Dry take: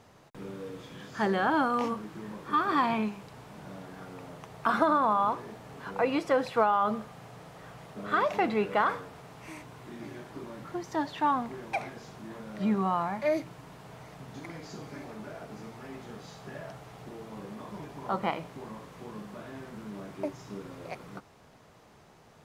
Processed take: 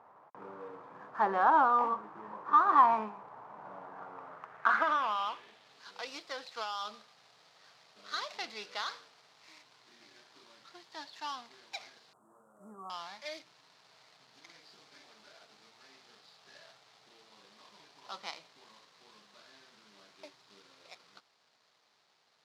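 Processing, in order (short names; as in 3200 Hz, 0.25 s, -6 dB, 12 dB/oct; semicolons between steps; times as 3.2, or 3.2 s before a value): median filter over 15 samples; 12.13–12.9 Chebyshev band-stop 1300–8000 Hz, order 4; band-pass sweep 1000 Hz -> 4300 Hz, 4.08–5.82; gain +7 dB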